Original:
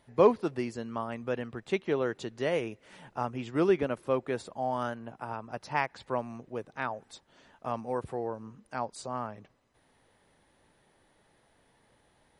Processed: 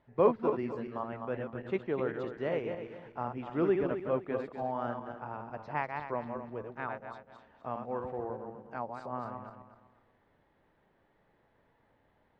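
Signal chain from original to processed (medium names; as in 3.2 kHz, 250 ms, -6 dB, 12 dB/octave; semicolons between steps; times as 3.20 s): backward echo that repeats 125 ms, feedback 53%, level -5 dB; low-pass 2.1 kHz 12 dB/octave; trim -4 dB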